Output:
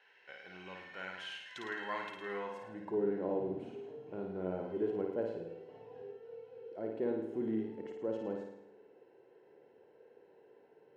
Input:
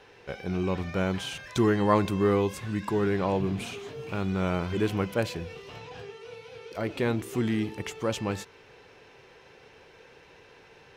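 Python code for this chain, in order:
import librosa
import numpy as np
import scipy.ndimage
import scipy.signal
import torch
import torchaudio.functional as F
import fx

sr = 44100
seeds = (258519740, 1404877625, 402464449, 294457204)

y = fx.notch_comb(x, sr, f0_hz=1200.0)
y = fx.room_flutter(y, sr, wall_m=9.3, rt60_s=0.8)
y = fx.filter_sweep_bandpass(y, sr, from_hz=2000.0, to_hz=400.0, start_s=2.22, end_s=3.0, q=1.4)
y = y * 10.0 ** (-6.0 / 20.0)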